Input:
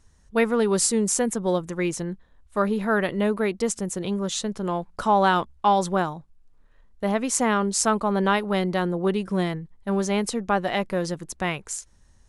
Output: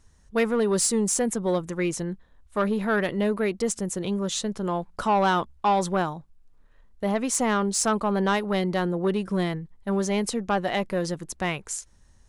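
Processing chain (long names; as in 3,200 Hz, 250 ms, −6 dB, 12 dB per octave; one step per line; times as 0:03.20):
soft clipping −14.5 dBFS, distortion −18 dB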